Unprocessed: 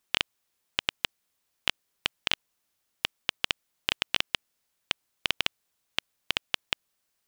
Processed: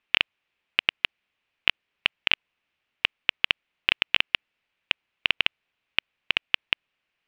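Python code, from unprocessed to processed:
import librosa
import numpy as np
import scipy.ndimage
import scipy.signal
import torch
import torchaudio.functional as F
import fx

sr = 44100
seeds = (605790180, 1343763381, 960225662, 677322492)

y = fx.lowpass_res(x, sr, hz=2600.0, q=2.9)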